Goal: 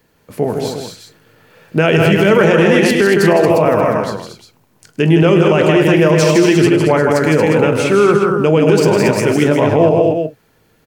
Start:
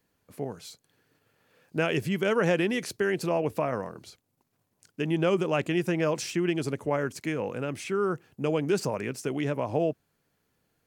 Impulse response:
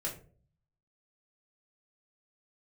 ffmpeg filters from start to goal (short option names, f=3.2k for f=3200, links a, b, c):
-filter_complex "[0:a]equalizer=f=10k:w=0.54:g=-4.5,aecho=1:1:104|159|229|355:0.188|0.562|0.473|0.316,asplit=2[a][b];[1:a]atrim=start_sample=2205,atrim=end_sample=3528[c];[b][c]afir=irnorm=-1:irlink=0,volume=-9dB[d];[a][d]amix=inputs=2:normalize=0,alimiter=level_in=16dB:limit=-1dB:release=50:level=0:latency=1,volume=-1dB"